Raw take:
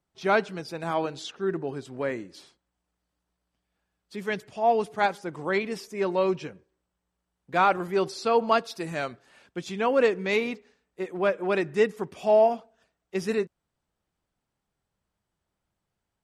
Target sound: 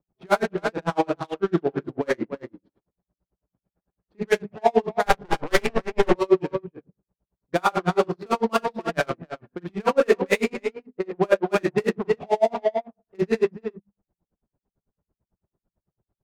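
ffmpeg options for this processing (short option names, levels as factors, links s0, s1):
-filter_complex "[0:a]asplit=2[s0][s1];[s1]adynamicsmooth=sensitivity=3.5:basefreq=4200,volume=1[s2];[s0][s2]amix=inputs=2:normalize=0,aecho=1:1:34.99|291.5:0.398|0.282,adynamicsmooth=sensitivity=2.5:basefreq=700,alimiter=limit=0.2:level=0:latency=1:release=22,asettb=1/sr,asplit=3[s3][s4][s5];[s3]atrim=end=5.064[s6];[s4]atrim=start=5.06:end=6.12,asetpts=PTS-STARTPTS,afade=t=in:d=0.004:c=qsin,afade=t=out:st=1.056:d=0.004:c=qsin,aeval=exprs='0.2*(cos(1*acos(clip(val(0)/0.2,-1,1)))-cos(1*PI/2))+0.0708*(cos(4*acos(clip(val(0)/0.2,-1,1)))-cos(4*PI/2))':c=same[s7];[s5]atrim=start=6.116[s8];[s6][s7]acrossfade=d=0.004:c1=hsin:c2=qsin[s9];[s9][s8]acrossfade=d=0.004:c1=qsin:c2=hsin,bandreject=f=50:t=h:w=6,bandreject=f=100:t=h:w=6,bandreject=f=150:t=h:w=6,bandreject=f=200:t=h:w=6,bandreject=f=250:t=h:w=6,asplit=2[s10][s11];[s11]adelay=40,volume=0.794[s12];[s10][s12]amix=inputs=2:normalize=0,aeval=exprs='val(0)*pow(10,-37*(0.5-0.5*cos(2*PI*9*n/s))/20)':c=same,volume=1.78"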